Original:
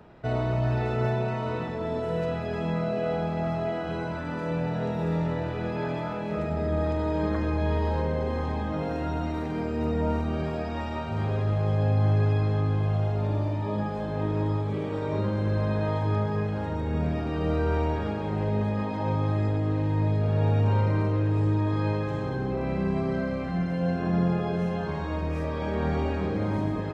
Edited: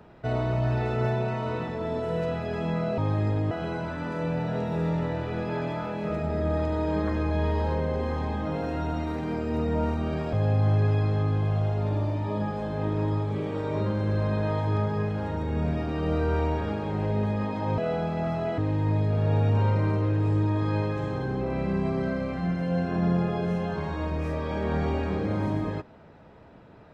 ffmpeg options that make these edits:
ffmpeg -i in.wav -filter_complex "[0:a]asplit=6[link_01][link_02][link_03][link_04][link_05][link_06];[link_01]atrim=end=2.982[link_07];[link_02]atrim=start=19.158:end=19.692[link_08];[link_03]atrim=start=3.778:end=10.602[link_09];[link_04]atrim=start=11.708:end=19.162[link_10];[link_05]atrim=start=2.978:end=3.782[link_11];[link_06]atrim=start=19.688[link_12];[link_07][link_08]acrossfade=duration=0.004:curve1=hsin:curve2=hsin[link_13];[link_13][link_09]acrossfade=duration=0.004:curve1=hsin:curve2=hsin[link_14];[link_14][link_10]acrossfade=duration=0.004:curve1=hsin:curve2=hsin[link_15];[link_15][link_11]acrossfade=duration=0.004:curve1=hsin:curve2=hsin[link_16];[link_16][link_12]acrossfade=duration=0.004:curve1=hsin:curve2=hsin" out.wav

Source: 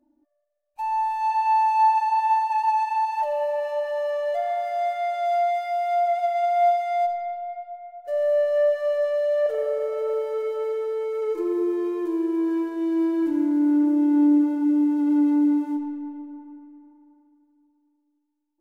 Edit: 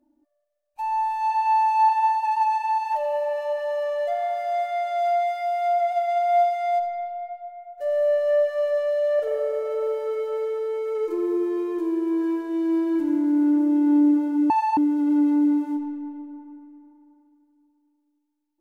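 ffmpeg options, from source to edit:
ffmpeg -i in.wav -filter_complex "[0:a]asplit=4[link_01][link_02][link_03][link_04];[link_01]atrim=end=1.892[link_05];[link_02]atrim=start=2.158:end=14.772[link_06];[link_03]atrim=start=1.888:end=2.162[link_07];[link_04]atrim=start=14.768[link_08];[link_05][link_06]acrossfade=duration=0.004:curve1=hsin:curve2=hsin[link_09];[link_09][link_07]acrossfade=duration=0.004:curve1=hsin:curve2=hsin[link_10];[link_10][link_08]acrossfade=duration=0.004:curve1=hsin:curve2=hsin" out.wav

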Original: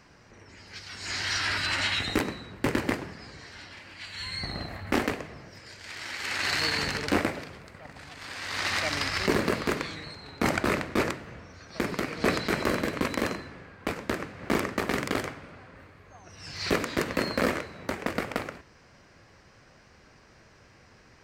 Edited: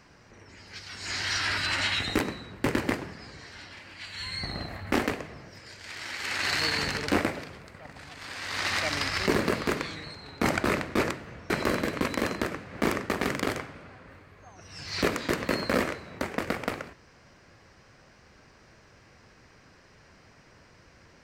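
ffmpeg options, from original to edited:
ffmpeg -i in.wav -filter_complex "[0:a]asplit=3[link_01][link_02][link_03];[link_01]atrim=end=11.502[link_04];[link_02]atrim=start=12.498:end=13.412[link_05];[link_03]atrim=start=14.088[link_06];[link_04][link_05]acrossfade=duration=0.004:curve1=hsin:curve2=hsin[link_07];[link_07][link_06]acrossfade=duration=0.004:curve1=hsin:curve2=hsin" out.wav

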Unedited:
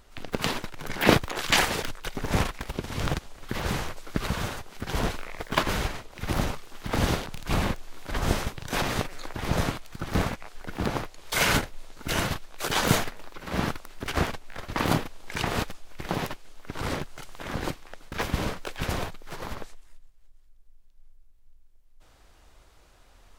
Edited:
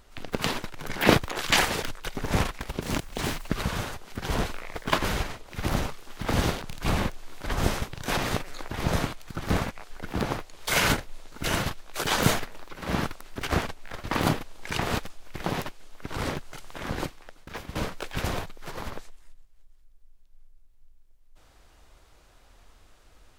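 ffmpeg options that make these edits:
ffmpeg -i in.wav -filter_complex "[0:a]asplit=4[link_01][link_02][link_03][link_04];[link_01]atrim=end=2.814[link_05];[link_02]atrim=start=2.81:end=4.13,asetpts=PTS-STARTPTS,asetrate=86436,aresample=44100[link_06];[link_03]atrim=start=4.126:end=18.4,asetpts=PTS-STARTPTS,afade=type=out:start_time=13.484:duration=0.79:silence=0.188365[link_07];[link_04]atrim=start=18.4,asetpts=PTS-STARTPTS,afade=type=in:duration=0.004:curve=hsin:silence=0.188365[link_08];[link_05][link_06]acrossfade=duration=0.004:curve1=hsin:curve2=hsin[link_09];[link_07][link_08]concat=n=2:v=0:a=1[link_10];[link_09][link_10]acrossfade=duration=0.004:curve1=hsin:curve2=hsin" out.wav

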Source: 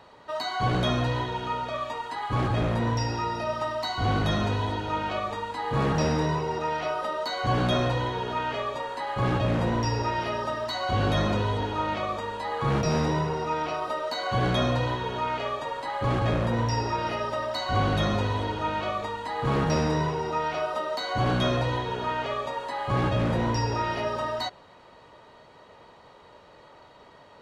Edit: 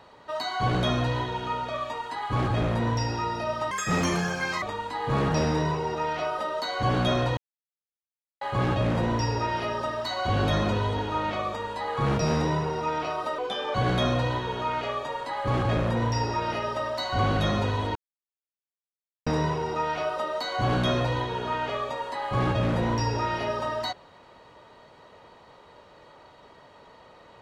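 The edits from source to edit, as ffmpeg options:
ffmpeg -i in.wav -filter_complex "[0:a]asplit=9[link_01][link_02][link_03][link_04][link_05][link_06][link_07][link_08][link_09];[link_01]atrim=end=3.714[link_10];[link_02]atrim=start=3.71:end=5.26,asetpts=PTS-STARTPTS,asetrate=74970,aresample=44100[link_11];[link_03]atrim=start=5.256:end=8.01,asetpts=PTS-STARTPTS,afade=type=out:start_time=2.75:duration=0.004:curve=hsin[link_12];[link_04]atrim=start=8.01:end=9.05,asetpts=PTS-STARTPTS,volume=0[link_13];[link_05]atrim=start=9.05:end=14.024,asetpts=PTS-STARTPTS,afade=type=in:duration=0.004:curve=hsin[link_14];[link_06]atrim=start=14.02:end=14.31,asetpts=PTS-STARTPTS,asetrate=35280,aresample=44100,atrim=end_sample=15986,asetpts=PTS-STARTPTS[link_15];[link_07]atrim=start=14.306:end=18.52,asetpts=PTS-STARTPTS,afade=type=out:start_time=4.21:duration=0.004:curve=hsin[link_16];[link_08]atrim=start=18.52:end=19.83,asetpts=PTS-STARTPTS,volume=0[link_17];[link_09]atrim=start=19.83,asetpts=PTS-STARTPTS,afade=type=in:duration=0.004:curve=hsin[link_18];[link_10][link_11]acrossfade=duration=0.004:curve1=hsin:curve2=hsin[link_19];[link_12][link_13][link_14]concat=n=3:v=0:a=1[link_20];[link_19][link_20]acrossfade=duration=0.004:curve1=hsin:curve2=hsin[link_21];[link_21][link_15]acrossfade=duration=0.004:curve1=hsin:curve2=hsin[link_22];[link_16][link_17][link_18]concat=n=3:v=0:a=1[link_23];[link_22][link_23]acrossfade=duration=0.004:curve1=hsin:curve2=hsin" out.wav

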